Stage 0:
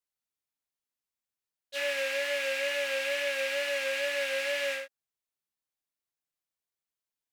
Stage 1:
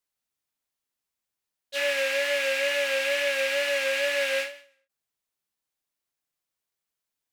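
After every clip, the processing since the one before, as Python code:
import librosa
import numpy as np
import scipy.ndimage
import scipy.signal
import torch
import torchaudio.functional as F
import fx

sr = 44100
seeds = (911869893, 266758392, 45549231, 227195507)

y = fx.end_taper(x, sr, db_per_s=120.0)
y = y * librosa.db_to_amplitude(5.0)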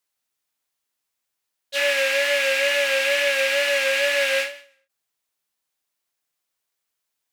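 y = fx.low_shelf(x, sr, hz=340.0, db=-7.0)
y = y * librosa.db_to_amplitude(6.0)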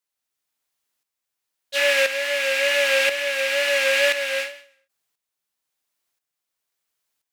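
y = fx.tremolo_shape(x, sr, shape='saw_up', hz=0.97, depth_pct=65)
y = y * librosa.db_to_amplitude(3.0)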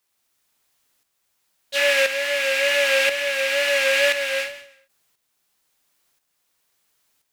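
y = fx.law_mismatch(x, sr, coded='mu')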